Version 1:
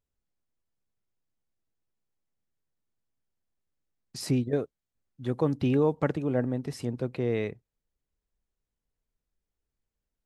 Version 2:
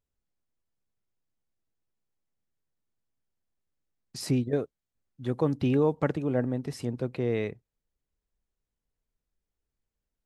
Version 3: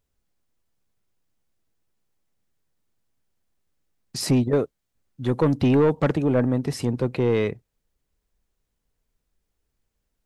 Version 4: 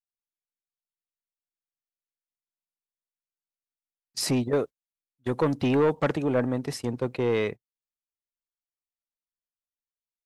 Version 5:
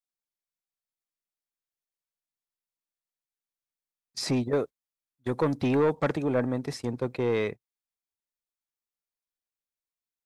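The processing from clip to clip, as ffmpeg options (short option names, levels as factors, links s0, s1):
-af anull
-af "asoftclip=type=tanh:threshold=0.0841,volume=2.82"
-af "lowshelf=f=330:g=-8.5,agate=range=0.0355:threshold=0.0224:ratio=16:detection=peak"
-filter_complex "[0:a]bandreject=f=2900:w=11,acrossover=split=7400[s0][s1];[s1]acompressor=threshold=0.00355:ratio=4:attack=1:release=60[s2];[s0][s2]amix=inputs=2:normalize=0,volume=0.841"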